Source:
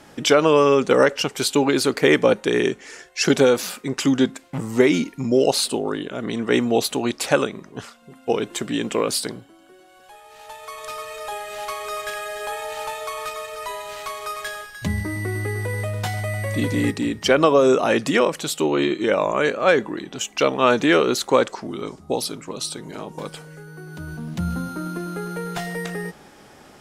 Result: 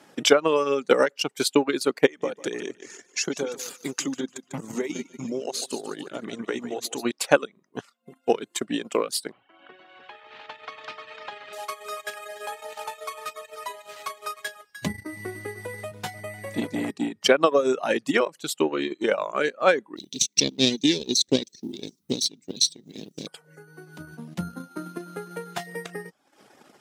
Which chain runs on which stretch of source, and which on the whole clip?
2.06–7.05 bell 6600 Hz +10.5 dB 0.24 oct + compressor 3:1, threshold -23 dBFS + feedback echo 0.147 s, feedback 43%, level -7 dB
9.32–11.53 LPF 2800 Hz 24 dB/oct + bell 180 Hz -8 dB 2.6 oct + spectral compressor 2:1
15.91–17.17 HPF 83 Hz + bell 160 Hz +4 dB 1.2 oct + core saturation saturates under 420 Hz
19.96–23.27 minimum comb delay 0.5 ms + EQ curve 110 Hz 0 dB, 240 Hz +4 dB, 370 Hz 0 dB, 730 Hz -19 dB, 1300 Hz -29 dB, 1900 Hz -11 dB, 3600 Hz +9 dB, 6000 Hz +12 dB, 12000 Hz -10 dB + requantised 10-bit, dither triangular
whole clip: reverb removal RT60 0.65 s; transient shaper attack +7 dB, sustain -11 dB; HPF 180 Hz 12 dB/oct; gain -5.5 dB

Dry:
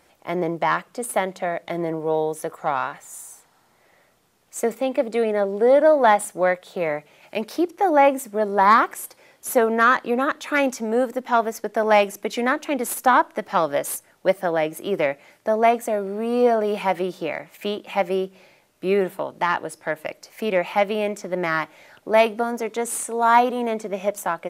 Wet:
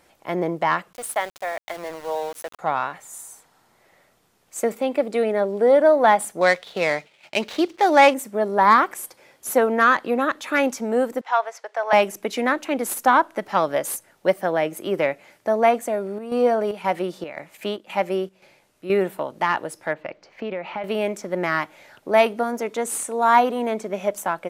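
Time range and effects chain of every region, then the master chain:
0.93–2.59 HPF 650 Hz + sample gate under -35.5 dBFS
6.41–8.14 median filter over 9 samples + expander -47 dBFS + bell 4200 Hz +15 dB 2.1 oct
11.21–11.93 HPF 630 Hz 24 dB/oct + air absorption 87 m
15.79–18.9 Chebyshev low-pass 12000 Hz + chopper 1.9 Hz, depth 60%, duty 75%
19.93–20.84 compressor, threshold -24 dBFS + air absorption 210 m
whole clip: dry

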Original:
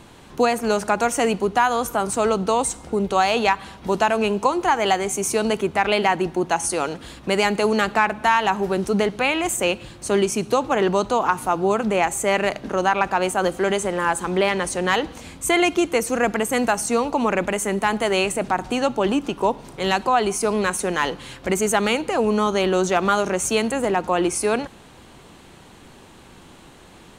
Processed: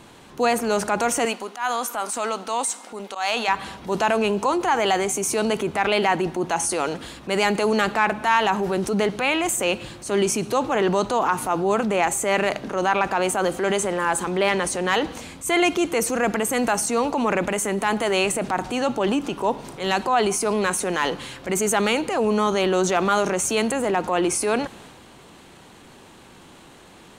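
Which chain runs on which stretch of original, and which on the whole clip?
1.25–3.48 bell 350 Hz -13 dB 1.2 oct + auto swell 0.101 s + brick-wall FIR high-pass 210 Hz
whole clip: low shelf 87 Hz -8.5 dB; transient shaper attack -5 dB, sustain +4 dB

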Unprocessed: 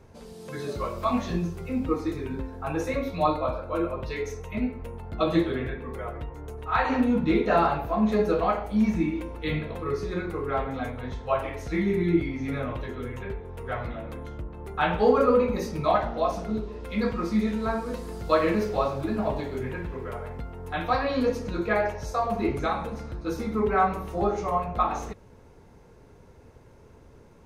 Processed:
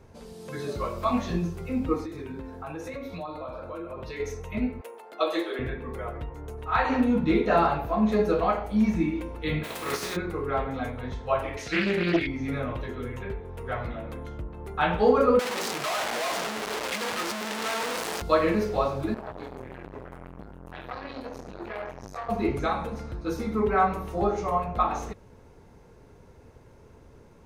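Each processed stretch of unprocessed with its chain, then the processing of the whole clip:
2.04–4.2 HPF 91 Hz 6 dB/oct + compressor, threshold -33 dBFS
4.81–5.59 HPF 390 Hz 24 dB/oct + high shelf 6100 Hz +6.5 dB
9.63–10.15 spectral contrast lowered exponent 0.49 + HPF 280 Hz 6 dB/oct + requantised 8-bit, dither triangular
11.57–12.27 weighting filter D + Doppler distortion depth 0.44 ms
15.39–18.22 infinite clipping + weighting filter A
19.14–22.29 compressor 4:1, threshold -31 dBFS + doubler 26 ms -4 dB + core saturation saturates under 1100 Hz
whole clip: dry

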